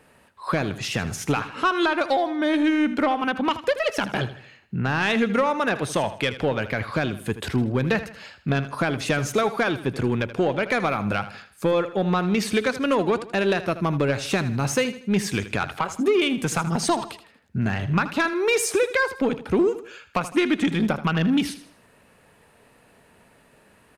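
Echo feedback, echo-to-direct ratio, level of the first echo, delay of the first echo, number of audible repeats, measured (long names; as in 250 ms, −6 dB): 39%, −13.0 dB, −13.5 dB, 79 ms, 3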